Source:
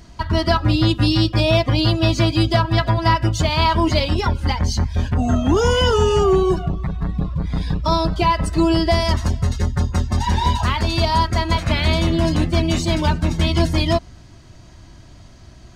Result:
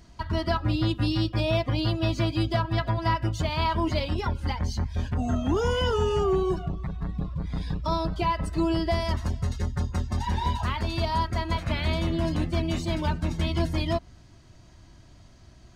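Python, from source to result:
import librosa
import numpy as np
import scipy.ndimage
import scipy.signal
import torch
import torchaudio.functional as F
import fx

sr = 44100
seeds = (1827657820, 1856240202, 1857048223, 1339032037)

y = fx.dynamic_eq(x, sr, hz=6500.0, q=0.74, threshold_db=-37.0, ratio=4.0, max_db=-5)
y = F.gain(torch.from_numpy(y), -8.5).numpy()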